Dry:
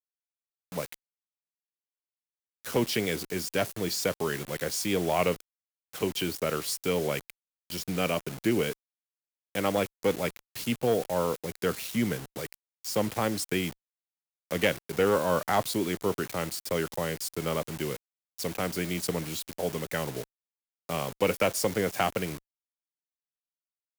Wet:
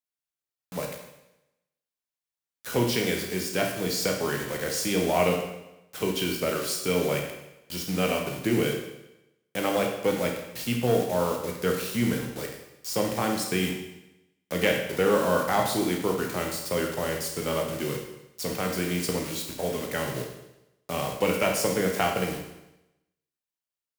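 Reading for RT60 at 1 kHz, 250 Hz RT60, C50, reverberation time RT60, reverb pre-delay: 0.90 s, 0.90 s, 4.5 dB, 0.90 s, 16 ms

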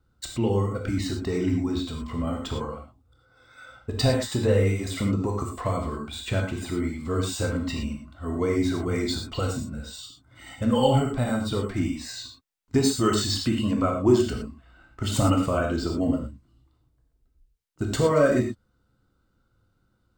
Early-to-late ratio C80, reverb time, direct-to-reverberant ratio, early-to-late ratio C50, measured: 8.5 dB, no single decay rate, 1.5 dB, 4.5 dB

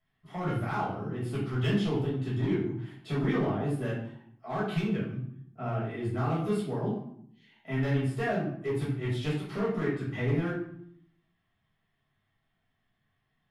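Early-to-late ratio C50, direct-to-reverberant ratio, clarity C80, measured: 3.5 dB, -8.0 dB, 7.0 dB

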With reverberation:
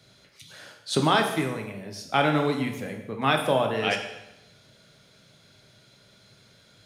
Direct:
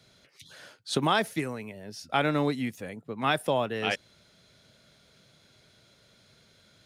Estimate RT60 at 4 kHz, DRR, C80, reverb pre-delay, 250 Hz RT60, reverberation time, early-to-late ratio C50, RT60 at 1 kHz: 0.85 s, 3.0 dB, 9.0 dB, 4 ms, 0.90 s, 0.85 s, 7.0 dB, 0.90 s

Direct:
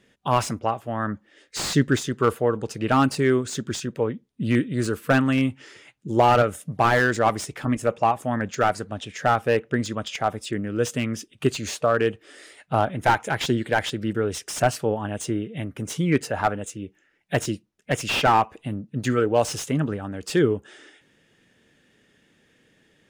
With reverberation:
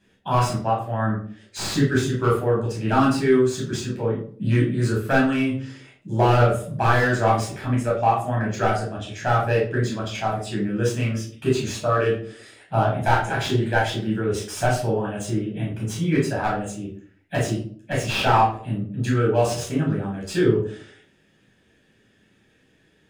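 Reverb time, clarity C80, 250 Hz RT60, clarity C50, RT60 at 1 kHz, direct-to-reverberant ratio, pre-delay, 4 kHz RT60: 0.50 s, 10.5 dB, 0.65 s, 5.0 dB, 0.45 s, -5.0 dB, 10 ms, 0.35 s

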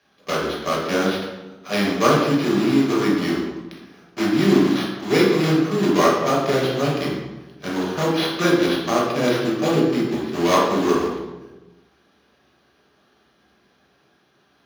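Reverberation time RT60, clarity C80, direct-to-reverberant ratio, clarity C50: 1.1 s, 4.5 dB, -4.5 dB, 1.5 dB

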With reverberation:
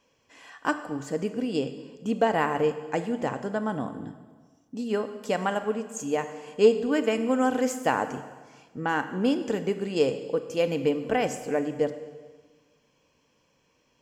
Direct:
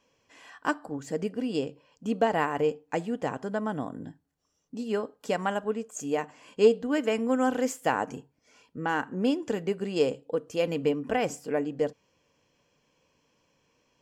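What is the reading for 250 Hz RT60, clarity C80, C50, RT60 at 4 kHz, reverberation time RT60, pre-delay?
1.6 s, 12.5 dB, 11.0 dB, 1.3 s, 1.5 s, 27 ms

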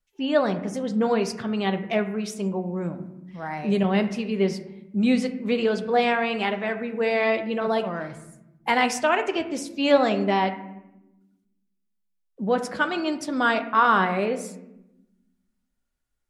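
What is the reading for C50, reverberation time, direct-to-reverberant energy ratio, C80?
11.5 dB, 1.0 s, 7.5 dB, 14.0 dB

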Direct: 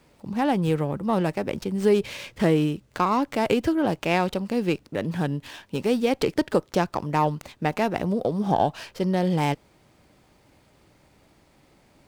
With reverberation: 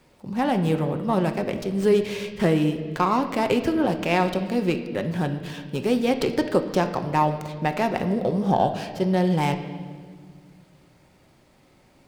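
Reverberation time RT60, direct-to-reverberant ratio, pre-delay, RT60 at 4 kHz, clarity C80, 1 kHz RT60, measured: 1.8 s, 6.0 dB, 5 ms, 1.6 s, 11.5 dB, 1.5 s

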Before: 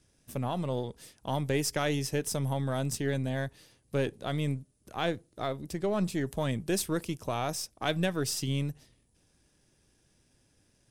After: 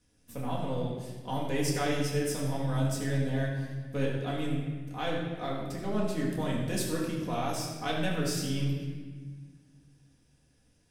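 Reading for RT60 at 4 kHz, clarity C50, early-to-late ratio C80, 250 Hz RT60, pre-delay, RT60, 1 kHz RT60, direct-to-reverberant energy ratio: 1.2 s, 1.5 dB, 4.0 dB, 2.6 s, 4 ms, 1.5 s, 1.4 s, -5.5 dB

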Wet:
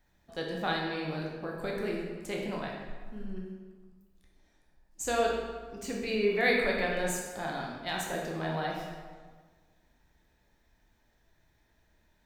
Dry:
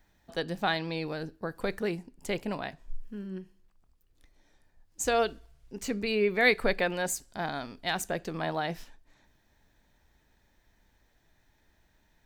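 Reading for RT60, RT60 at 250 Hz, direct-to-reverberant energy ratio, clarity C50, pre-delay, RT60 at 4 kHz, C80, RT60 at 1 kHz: 1.5 s, 1.6 s, -2.0 dB, 1.5 dB, 12 ms, 1.0 s, 3.5 dB, 1.5 s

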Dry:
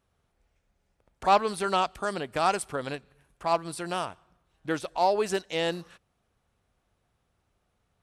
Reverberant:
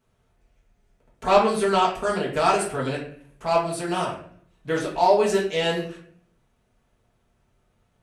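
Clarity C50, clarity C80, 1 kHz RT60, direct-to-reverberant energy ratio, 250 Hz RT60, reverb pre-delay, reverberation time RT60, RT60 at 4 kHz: 6.0 dB, 10.0 dB, 0.50 s, -5.5 dB, 0.75 s, 4 ms, 0.55 s, 0.40 s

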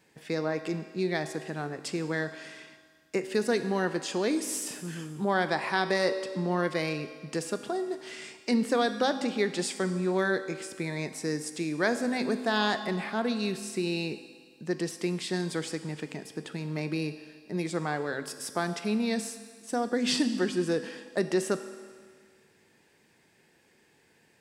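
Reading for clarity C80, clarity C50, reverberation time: 11.5 dB, 10.5 dB, 1.8 s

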